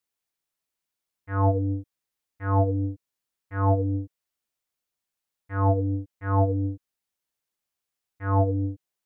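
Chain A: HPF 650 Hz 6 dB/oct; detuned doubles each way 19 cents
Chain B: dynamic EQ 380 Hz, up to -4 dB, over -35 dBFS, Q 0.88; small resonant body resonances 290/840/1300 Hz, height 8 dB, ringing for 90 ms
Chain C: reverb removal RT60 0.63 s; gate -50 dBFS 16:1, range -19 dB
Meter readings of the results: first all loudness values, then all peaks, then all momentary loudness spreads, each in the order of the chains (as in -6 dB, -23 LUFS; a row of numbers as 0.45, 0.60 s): -37.0, -25.5, -27.5 LUFS; -17.5, -12.5, -13.0 dBFS; 13, 12, 11 LU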